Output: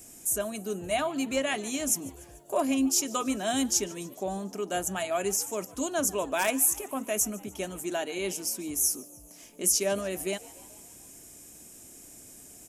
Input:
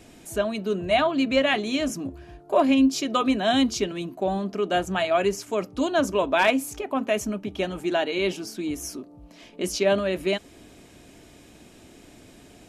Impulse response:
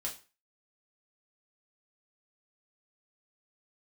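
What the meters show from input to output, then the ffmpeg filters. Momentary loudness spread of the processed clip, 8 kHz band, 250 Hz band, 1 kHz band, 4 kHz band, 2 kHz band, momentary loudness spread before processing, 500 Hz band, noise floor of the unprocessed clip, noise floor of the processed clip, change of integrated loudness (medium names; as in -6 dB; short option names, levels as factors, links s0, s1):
22 LU, +10.0 dB, -7.5 dB, -7.5 dB, -6.0 dB, -7.5 dB, 10 LU, -7.5 dB, -51 dBFS, -50 dBFS, -4.0 dB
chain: -filter_complex "[0:a]aexciter=amount=9.4:drive=4.8:freq=5800,asplit=2[s0][s1];[s1]asplit=5[s2][s3][s4][s5][s6];[s2]adelay=146,afreqshift=81,volume=0.0794[s7];[s3]adelay=292,afreqshift=162,volume=0.0501[s8];[s4]adelay=438,afreqshift=243,volume=0.0316[s9];[s5]adelay=584,afreqshift=324,volume=0.02[s10];[s6]adelay=730,afreqshift=405,volume=0.0124[s11];[s7][s8][s9][s10][s11]amix=inputs=5:normalize=0[s12];[s0][s12]amix=inputs=2:normalize=0,volume=0.422"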